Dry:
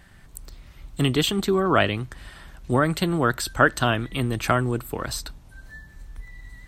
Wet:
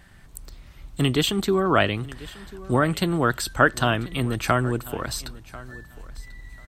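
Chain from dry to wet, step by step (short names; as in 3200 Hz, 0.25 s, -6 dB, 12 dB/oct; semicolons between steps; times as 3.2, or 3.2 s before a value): feedback echo 1.042 s, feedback 16%, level -19.5 dB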